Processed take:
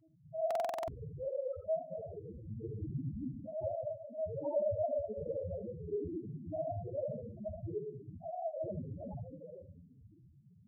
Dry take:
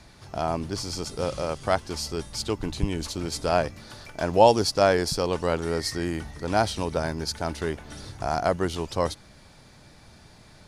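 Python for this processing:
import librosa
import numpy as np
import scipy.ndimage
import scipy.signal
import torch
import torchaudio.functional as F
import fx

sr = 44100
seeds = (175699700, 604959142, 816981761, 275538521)

p1 = fx.room_shoebox(x, sr, seeds[0], volume_m3=1900.0, walls='mixed', distance_m=2.8)
p2 = fx.lpc_vocoder(p1, sr, seeds[1], excitation='pitch_kept', order=8)
p3 = 10.0 ** (-12.0 / 20.0) * (np.abs((p2 / 10.0 ** (-12.0 / 20.0) + 3.0) % 4.0 - 2.0) - 1.0)
p4 = scipy.signal.sosfilt(scipy.signal.butter(2, 96.0, 'highpass', fs=sr, output='sos'), p3)
p5 = fx.high_shelf(p4, sr, hz=2400.0, db=-10.0)
p6 = fx.notch(p5, sr, hz=1900.0, q=6.7)
p7 = fx.spec_topn(p6, sr, count=2)
p8 = p7 + fx.room_early_taps(p7, sr, ms=(59, 78), db=(-15.5, -11.0), dry=0)
p9 = fx.buffer_glitch(p8, sr, at_s=(0.46,), block=2048, repeats=8)
p10 = fx.comb_cascade(p9, sr, direction='rising', hz=1.2)
y = F.gain(torch.from_numpy(p10), -3.5).numpy()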